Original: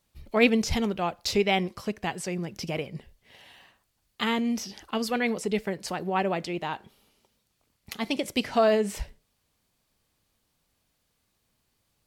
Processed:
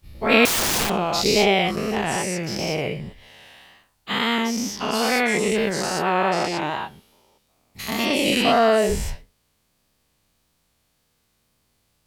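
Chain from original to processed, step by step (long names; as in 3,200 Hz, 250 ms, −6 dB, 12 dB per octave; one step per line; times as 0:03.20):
every bin's largest magnitude spread in time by 240 ms
tape wow and flutter 45 cents
0:00.45–0:00.90: wrap-around overflow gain 17 dB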